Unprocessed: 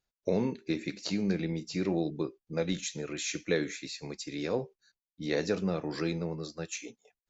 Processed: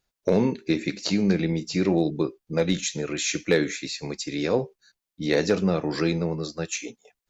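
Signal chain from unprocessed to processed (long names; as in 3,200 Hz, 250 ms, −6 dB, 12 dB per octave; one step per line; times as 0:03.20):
hard clipping −19 dBFS, distortion −29 dB
level +8 dB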